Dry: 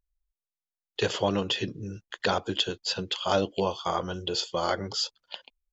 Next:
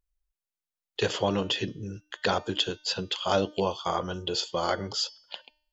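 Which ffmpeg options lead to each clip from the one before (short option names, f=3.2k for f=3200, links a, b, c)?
-af "bandreject=f=303:t=h:w=4,bandreject=f=606:t=h:w=4,bandreject=f=909:t=h:w=4,bandreject=f=1.212k:t=h:w=4,bandreject=f=1.515k:t=h:w=4,bandreject=f=1.818k:t=h:w=4,bandreject=f=2.121k:t=h:w=4,bandreject=f=2.424k:t=h:w=4,bandreject=f=2.727k:t=h:w=4,bandreject=f=3.03k:t=h:w=4,bandreject=f=3.333k:t=h:w=4,bandreject=f=3.636k:t=h:w=4,bandreject=f=3.939k:t=h:w=4,bandreject=f=4.242k:t=h:w=4,bandreject=f=4.545k:t=h:w=4,bandreject=f=4.848k:t=h:w=4,bandreject=f=5.151k:t=h:w=4,bandreject=f=5.454k:t=h:w=4,bandreject=f=5.757k:t=h:w=4,bandreject=f=6.06k:t=h:w=4,bandreject=f=6.363k:t=h:w=4,bandreject=f=6.666k:t=h:w=4"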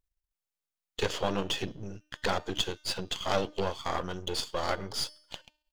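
-af "aeval=exprs='if(lt(val(0),0),0.251*val(0),val(0))':c=same"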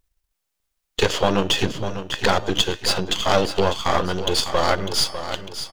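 -filter_complex "[0:a]asplit=2[a][b];[b]alimiter=limit=-18dB:level=0:latency=1:release=245,volume=-2dB[c];[a][c]amix=inputs=2:normalize=0,aecho=1:1:600|1200|1800|2400:0.299|0.107|0.0387|0.0139,volume=7dB"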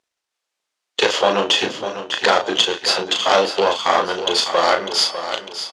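-filter_complex "[0:a]highpass=390,lowpass=6.7k,asplit=2[a][b];[b]adelay=35,volume=-6dB[c];[a][c]amix=inputs=2:normalize=0,volume=4dB"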